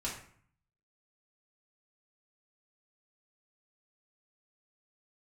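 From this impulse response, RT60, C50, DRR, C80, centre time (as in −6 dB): 0.55 s, 5.0 dB, −6.0 dB, 9.0 dB, 35 ms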